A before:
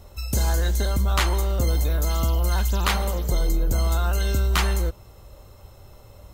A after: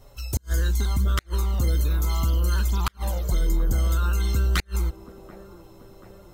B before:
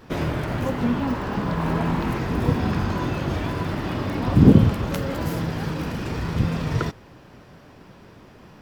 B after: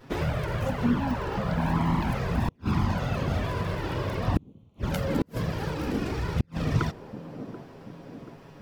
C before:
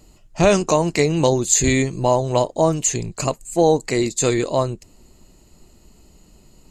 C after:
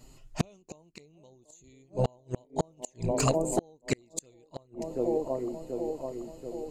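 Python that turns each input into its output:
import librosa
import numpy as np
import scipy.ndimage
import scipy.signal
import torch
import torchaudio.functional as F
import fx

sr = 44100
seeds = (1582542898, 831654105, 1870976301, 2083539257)

y = fx.env_flanger(x, sr, rest_ms=8.2, full_db=-15.0)
y = fx.echo_wet_bandpass(y, sr, ms=733, feedback_pct=57, hz=420.0, wet_db=-10)
y = fx.gate_flip(y, sr, shuts_db=-13.0, range_db=-39)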